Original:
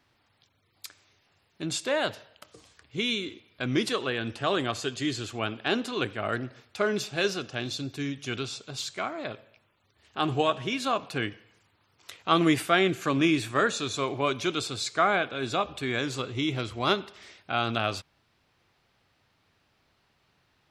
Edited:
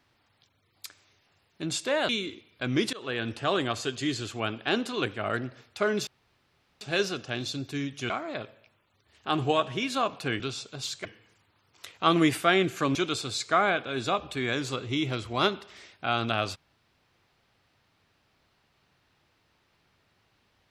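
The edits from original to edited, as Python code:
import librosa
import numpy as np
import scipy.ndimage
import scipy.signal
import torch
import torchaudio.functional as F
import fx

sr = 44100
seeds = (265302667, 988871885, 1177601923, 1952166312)

y = fx.edit(x, sr, fx.cut(start_s=2.09, length_s=0.99),
    fx.fade_in_from(start_s=3.92, length_s=0.25, floor_db=-23.5),
    fx.insert_room_tone(at_s=7.06, length_s=0.74),
    fx.move(start_s=8.35, length_s=0.65, to_s=11.3),
    fx.cut(start_s=13.2, length_s=1.21), tone=tone)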